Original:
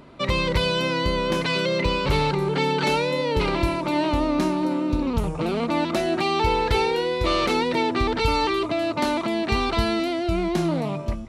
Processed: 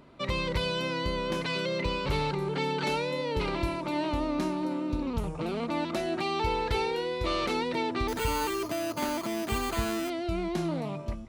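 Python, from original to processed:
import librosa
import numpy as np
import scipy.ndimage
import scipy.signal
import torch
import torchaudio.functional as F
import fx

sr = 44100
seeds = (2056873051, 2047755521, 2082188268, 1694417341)

y = fx.sample_hold(x, sr, seeds[0], rate_hz=5500.0, jitter_pct=0, at=(8.08, 10.1))
y = y * 10.0 ** (-7.5 / 20.0)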